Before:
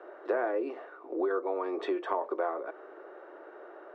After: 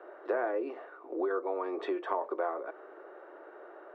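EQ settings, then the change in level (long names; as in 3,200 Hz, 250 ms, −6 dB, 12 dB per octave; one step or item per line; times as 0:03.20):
low-shelf EQ 420 Hz −3.5 dB
high-shelf EQ 4,000 Hz −7 dB
0.0 dB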